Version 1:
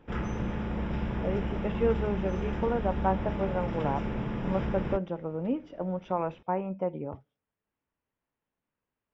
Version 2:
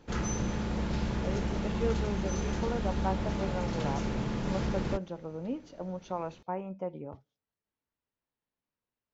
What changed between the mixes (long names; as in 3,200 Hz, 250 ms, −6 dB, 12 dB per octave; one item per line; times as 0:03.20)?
speech −5.5 dB
master: remove Savitzky-Golay smoothing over 25 samples